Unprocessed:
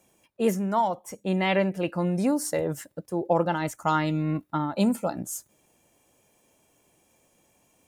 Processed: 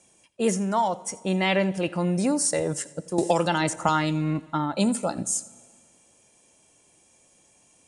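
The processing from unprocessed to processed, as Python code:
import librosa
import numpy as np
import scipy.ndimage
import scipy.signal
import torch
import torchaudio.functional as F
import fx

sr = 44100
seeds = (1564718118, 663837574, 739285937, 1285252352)

p1 = fx.high_shelf(x, sr, hz=4200.0, db=11.0)
p2 = fx.level_steps(p1, sr, step_db=17)
p3 = p1 + F.gain(torch.from_numpy(p2), 0.0).numpy()
p4 = scipy.signal.sosfilt(scipy.signal.butter(12, 10000.0, 'lowpass', fs=sr, output='sos'), p3)
p5 = p4 + 10.0 ** (-20.5 / 20.0) * np.pad(p4, (int(85 * sr / 1000.0), 0))[:len(p4)]
p6 = fx.rev_plate(p5, sr, seeds[0], rt60_s=1.9, hf_ratio=0.95, predelay_ms=0, drr_db=19.5)
p7 = fx.band_squash(p6, sr, depth_pct=100, at=(3.18, 3.89))
y = F.gain(torch.from_numpy(p7), -2.0).numpy()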